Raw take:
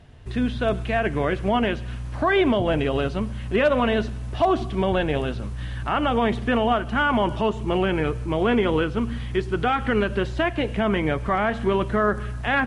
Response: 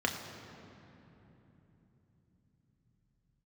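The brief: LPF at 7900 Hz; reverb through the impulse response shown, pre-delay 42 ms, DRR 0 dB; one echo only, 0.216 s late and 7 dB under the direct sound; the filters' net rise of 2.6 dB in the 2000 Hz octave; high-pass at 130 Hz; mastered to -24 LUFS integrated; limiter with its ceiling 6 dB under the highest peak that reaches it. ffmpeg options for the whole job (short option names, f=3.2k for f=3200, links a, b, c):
-filter_complex "[0:a]highpass=130,lowpass=7.9k,equalizer=f=2k:t=o:g=3.5,alimiter=limit=-14.5dB:level=0:latency=1,aecho=1:1:216:0.447,asplit=2[a][b];[1:a]atrim=start_sample=2205,adelay=42[c];[b][c]afir=irnorm=-1:irlink=0,volume=-8dB[d];[a][d]amix=inputs=2:normalize=0,volume=-2.5dB"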